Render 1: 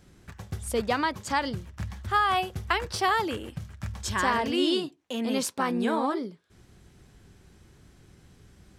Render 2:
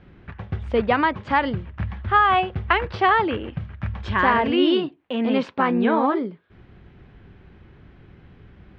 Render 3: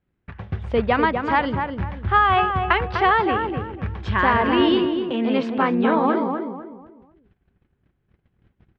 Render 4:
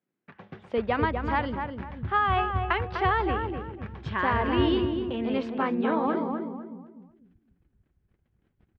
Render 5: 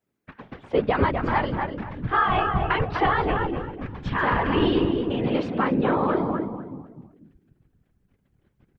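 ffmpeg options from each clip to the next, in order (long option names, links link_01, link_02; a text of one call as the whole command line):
ffmpeg -i in.wav -af "lowpass=frequency=2900:width=0.5412,lowpass=frequency=2900:width=1.3066,volume=7dB" out.wav
ffmpeg -i in.wav -filter_complex "[0:a]agate=range=-26dB:threshold=-43dB:ratio=16:detection=peak,asplit=2[link_01][link_02];[link_02]adelay=249,lowpass=frequency=1700:poles=1,volume=-5dB,asplit=2[link_03][link_04];[link_04]adelay=249,lowpass=frequency=1700:poles=1,volume=0.34,asplit=2[link_05][link_06];[link_06]adelay=249,lowpass=frequency=1700:poles=1,volume=0.34,asplit=2[link_07][link_08];[link_08]adelay=249,lowpass=frequency=1700:poles=1,volume=0.34[link_09];[link_01][link_03][link_05][link_07][link_09]amix=inputs=5:normalize=0" out.wav
ffmpeg -i in.wav -filter_complex "[0:a]lowshelf=frequency=330:gain=5,acrossover=split=180[link_01][link_02];[link_01]adelay=490[link_03];[link_03][link_02]amix=inputs=2:normalize=0,volume=-8dB" out.wav
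ffmpeg -i in.wav -filter_complex "[0:a]asplit=2[link_01][link_02];[link_02]alimiter=limit=-19.5dB:level=0:latency=1,volume=-2dB[link_03];[link_01][link_03]amix=inputs=2:normalize=0,afftfilt=real='hypot(re,im)*cos(2*PI*random(0))':imag='hypot(re,im)*sin(2*PI*random(1))':win_size=512:overlap=0.75,volume=5.5dB" out.wav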